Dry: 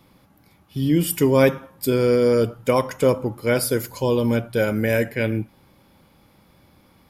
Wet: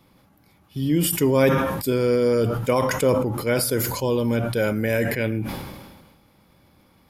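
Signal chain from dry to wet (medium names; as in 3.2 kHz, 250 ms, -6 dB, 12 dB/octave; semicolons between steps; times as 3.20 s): decay stretcher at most 40 dB/s; trim -2.5 dB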